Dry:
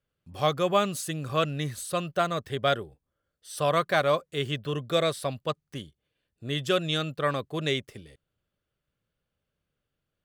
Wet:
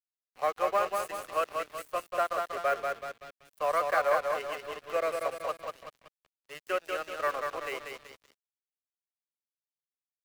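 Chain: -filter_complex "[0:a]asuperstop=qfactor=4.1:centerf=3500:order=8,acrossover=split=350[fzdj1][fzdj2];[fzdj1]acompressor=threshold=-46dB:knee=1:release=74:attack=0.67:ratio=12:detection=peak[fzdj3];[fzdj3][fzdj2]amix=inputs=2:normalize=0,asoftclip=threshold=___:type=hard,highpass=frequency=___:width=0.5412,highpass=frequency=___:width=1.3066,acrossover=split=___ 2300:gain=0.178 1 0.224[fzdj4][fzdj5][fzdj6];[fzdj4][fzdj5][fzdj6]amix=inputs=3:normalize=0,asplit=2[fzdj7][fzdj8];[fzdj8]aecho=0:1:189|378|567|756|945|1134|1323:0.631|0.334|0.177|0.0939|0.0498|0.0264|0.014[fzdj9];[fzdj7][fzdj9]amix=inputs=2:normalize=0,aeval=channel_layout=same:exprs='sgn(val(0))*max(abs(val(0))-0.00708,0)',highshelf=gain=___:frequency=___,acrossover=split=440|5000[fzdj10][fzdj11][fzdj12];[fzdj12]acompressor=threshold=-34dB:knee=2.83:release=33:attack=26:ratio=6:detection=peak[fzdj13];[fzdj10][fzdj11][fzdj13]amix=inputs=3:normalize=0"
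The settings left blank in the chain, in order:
-18dB, 230, 230, 430, 12, 12000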